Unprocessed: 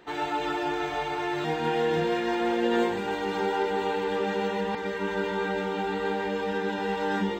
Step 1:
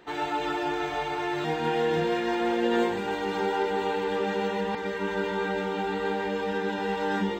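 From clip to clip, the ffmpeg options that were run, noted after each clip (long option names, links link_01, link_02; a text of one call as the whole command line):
ffmpeg -i in.wav -af anull out.wav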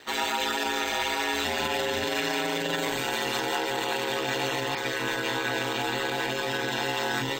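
ffmpeg -i in.wav -af "aeval=exprs='val(0)*sin(2*PI*70*n/s)':channel_layout=same,alimiter=limit=-23dB:level=0:latency=1:release=24,crystalizer=i=9.5:c=0" out.wav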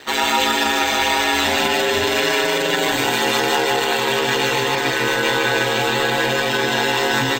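ffmpeg -i in.wav -af "aecho=1:1:155:0.562,volume=9dB" out.wav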